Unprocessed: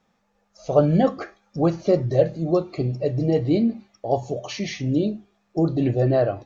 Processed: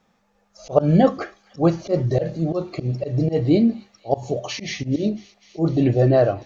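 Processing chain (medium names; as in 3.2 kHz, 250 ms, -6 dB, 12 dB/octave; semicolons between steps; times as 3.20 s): slow attack 104 ms; on a send: feedback echo behind a high-pass 249 ms, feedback 83%, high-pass 2.5 kHz, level -19 dB; on the sum: trim +3.5 dB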